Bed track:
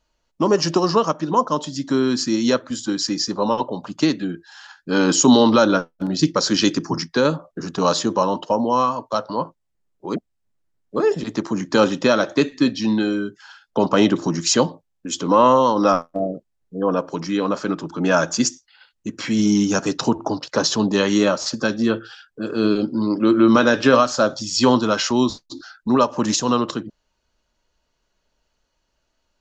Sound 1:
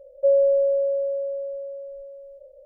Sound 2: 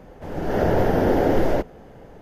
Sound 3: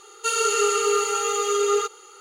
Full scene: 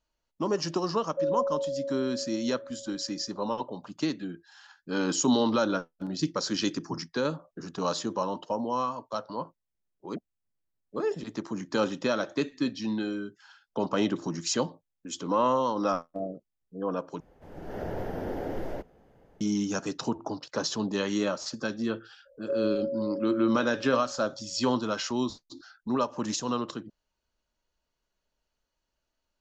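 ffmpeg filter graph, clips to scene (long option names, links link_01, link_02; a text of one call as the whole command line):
ffmpeg -i bed.wav -i cue0.wav -i cue1.wav -filter_complex "[1:a]asplit=2[link_01][link_02];[0:a]volume=-11dB,asplit=2[link_03][link_04];[link_03]atrim=end=17.204[link_05];[2:a]atrim=end=2.21,asetpts=PTS-STARTPTS,volume=-15dB[link_06];[link_04]atrim=start=19.406[link_07];[link_01]atrim=end=2.65,asetpts=PTS-STARTPTS,volume=-10.5dB,afade=type=in:duration=0.004:curve=hsin,afade=type=out:start_time=2.646:duration=0.004:curve=hsin,adelay=940[link_08];[link_02]atrim=end=2.65,asetpts=PTS-STARTPTS,volume=-12dB,afade=type=in:duration=0.02,afade=type=out:start_time=2.63:duration=0.02,adelay=22250[link_09];[link_05][link_06]acrossfade=duration=0.004:curve1=hsin:curve2=hsin[link_10];[link_10][link_07]acrossfade=duration=0.004:curve1=hsin:curve2=hsin[link_11];[link_11][link_08][link_09]amix=inputs=3:normalize=0" out.wav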